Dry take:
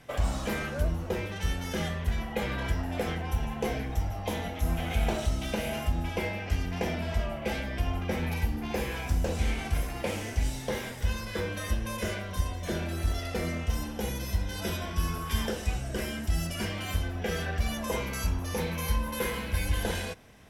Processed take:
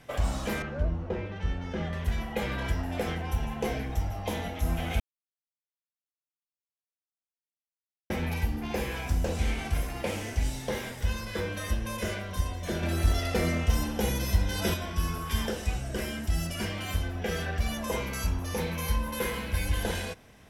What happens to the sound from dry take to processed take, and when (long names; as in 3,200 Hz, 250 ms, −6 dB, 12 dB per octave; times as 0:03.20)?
0:00.62–0:01.93: head-to-tape spacing loss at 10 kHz 26 dB
0:05.00–0:08.10: silence
0:12.83–0:14.74: clip gain +4.5 dB